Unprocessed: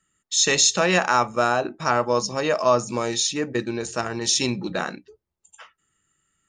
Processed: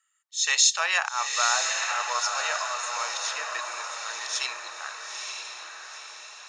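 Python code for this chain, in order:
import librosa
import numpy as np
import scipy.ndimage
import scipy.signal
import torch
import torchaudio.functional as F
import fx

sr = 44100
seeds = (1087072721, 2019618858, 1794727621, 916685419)

p1 = scipy.signal.sosfilt(scipy.signal.butter(4, 900.0, 'highpass', fs=sr, output='sos'), x)
p2 = fx.auto_swell(p1, sr, attack_ms=182.0)
p3 = p2 + fx.echo_diffused(p2, sr, ms=922, feedback_pct=50, wet_db=-4.0, dry=0)
y = p3 * librosa.db_to_amplitude(-1.5)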